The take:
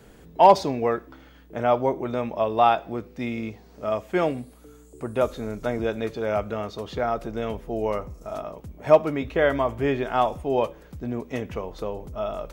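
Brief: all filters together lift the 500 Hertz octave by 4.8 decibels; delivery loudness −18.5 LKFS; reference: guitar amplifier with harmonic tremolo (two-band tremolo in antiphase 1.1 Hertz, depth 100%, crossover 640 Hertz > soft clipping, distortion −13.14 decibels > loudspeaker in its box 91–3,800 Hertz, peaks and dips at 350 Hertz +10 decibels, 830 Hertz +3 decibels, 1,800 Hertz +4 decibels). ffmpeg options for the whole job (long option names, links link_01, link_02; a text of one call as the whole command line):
ffmpeg -i in.wav -filter_complex "[0:a]equalizer=frequency=500:width_type=o:gain=3.5,acrossover=split=640[link_01][link_02];[link_01]aeval=exprs='val(0)*(1-1/2+1/2*cos(2*PI*1.1*n/s))':channel_layout=same[link_03];[link_02]aeval=exprs='val(0)*(1-1/2-1/2*cos(2*PI*1.1*n/s))':channel_layout=same[link_04];[link_03][link_04]amix=inputs=2:normalize=0,asoftclip=threshold=-14dB,highpass=91,equalizer=frequency=350:width_type=q:width=4:gain=10,equalizer=frequency=830:width_type=q:width=4:gain=3,equalizer=frequency=1800:width_type=q:width=4:gain=4,lowpass=frequency=3800:width=0.5412,lowpass=frequency=3800:width=1.3066,volume=9dB" out.wav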